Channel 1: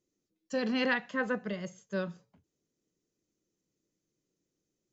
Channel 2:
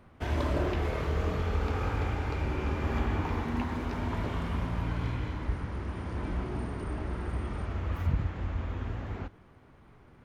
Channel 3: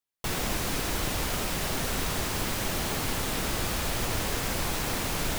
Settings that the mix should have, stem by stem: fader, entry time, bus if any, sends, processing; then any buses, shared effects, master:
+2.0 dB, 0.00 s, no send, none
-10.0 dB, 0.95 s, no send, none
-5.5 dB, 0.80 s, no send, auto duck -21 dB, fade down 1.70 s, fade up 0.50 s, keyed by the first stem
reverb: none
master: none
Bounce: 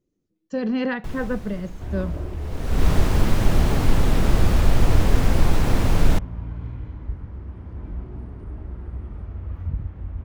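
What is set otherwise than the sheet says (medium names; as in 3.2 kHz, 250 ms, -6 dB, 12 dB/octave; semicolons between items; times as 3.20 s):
stem 2: entry 0.95 s -> 1.60 s; stem 3 -5.5 dB -> +4.0 dB; master: extra tilt EQ -3 dB/octave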